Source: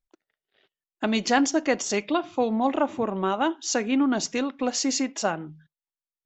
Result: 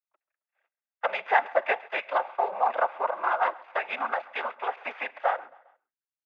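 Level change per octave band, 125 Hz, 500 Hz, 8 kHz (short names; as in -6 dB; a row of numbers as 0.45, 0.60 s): under -30 dB, -3.5 dB, n/a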